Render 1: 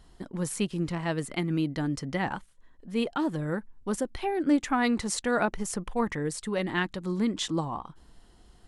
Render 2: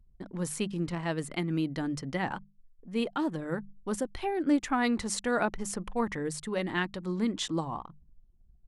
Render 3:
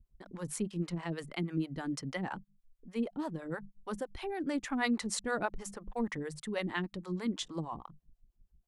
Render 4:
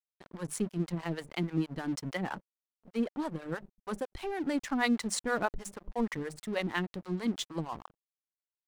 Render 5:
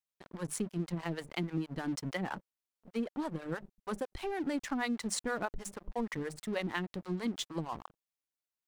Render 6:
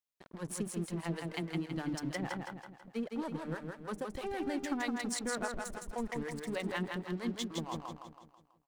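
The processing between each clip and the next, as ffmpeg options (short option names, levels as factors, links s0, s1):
-af "anlmdn=0.01,bandreject=f=50:t=h:w=6,bandreject=f=100:t=h:w=6,bandreject=f=150:t=h:w=6,bandreject=f=200:t=h:w=6,volume=0.794"
-filter_complex "[0:a]acrossover=split=460[s0][s1];[s0]aeval=exprs='val(0)*(1-1/2+1/2*cos(2*PI*6.3*n/s))':c=same[s2];[s1]aeval=exprs='val(0)*(1-1/2-1/2*cos(2*PI*6.3*n/s))':c=same[s3];[s2][s3]amix=inputs=2:normalize=0"
-af "aeval=exprs='sgn(val(0))*max(abs(val(0))-0.00335,0)':c=same,volume=1.5"
-af "acompressor=threshold=0.0316:ratio=6"
-af "aecho=1:1:163|326|489|652|815|978:0.631|0.297|0.139|0.0655|0.0308|0.0145,volume=0.75"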